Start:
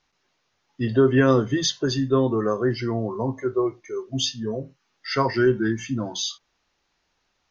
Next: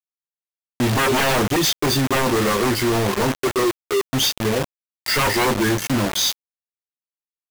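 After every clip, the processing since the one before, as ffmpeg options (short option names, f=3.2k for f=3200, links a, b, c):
-filter_complex "[0:a]asplit=2[a][b];[b]adelay=20,volume=-5.5dB[c];[a][c]amix=inputs=2:normalize=0,acrusher=bits=4:mix=0:aa=0.000001,aeval=exprs='0.1*(abs(mod(val(0)/0.1+3,4)-2)-1)':c=same,volume=7.5dB"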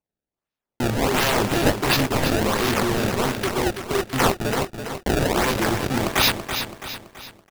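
-af "highshelf=f=4.7k:g=12,acrusher=samples=24:mix=1:aa=0.000001:lfo=1:lforange=38.4:lforate=1.4,aecho=1:1:331|662|993|1324|1655:0.398|0.183|0.0842|0.0388|0.0178,volume=-5dB"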